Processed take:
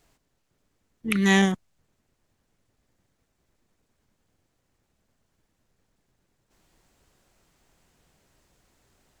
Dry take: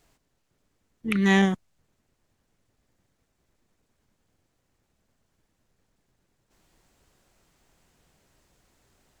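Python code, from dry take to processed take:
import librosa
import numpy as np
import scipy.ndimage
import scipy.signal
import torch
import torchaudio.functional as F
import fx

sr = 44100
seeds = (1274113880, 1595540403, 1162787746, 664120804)

y = fx.high_shelf(x, sr, hz=4800.0, db=10.5, at=(1.1, 1.52))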